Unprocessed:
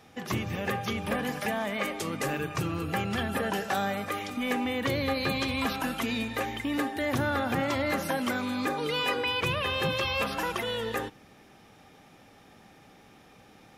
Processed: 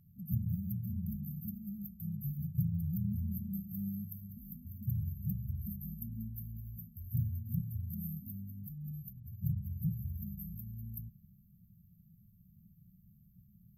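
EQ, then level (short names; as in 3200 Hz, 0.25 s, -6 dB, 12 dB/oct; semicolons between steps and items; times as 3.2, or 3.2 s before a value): brick-wall FIR band-stop 210–12000 Hz; bell 13000 Hz +2 dB 0.25 oct; +1.0 dB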